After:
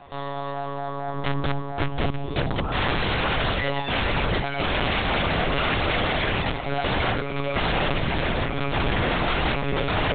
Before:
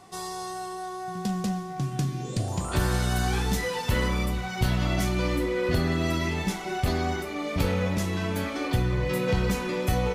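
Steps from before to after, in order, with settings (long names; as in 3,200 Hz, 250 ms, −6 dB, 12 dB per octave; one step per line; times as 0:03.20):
wrap-around overflow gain 22 dB
one-pitch LPC vocoder at 8 kHz 140 Hz
level +5.5 dB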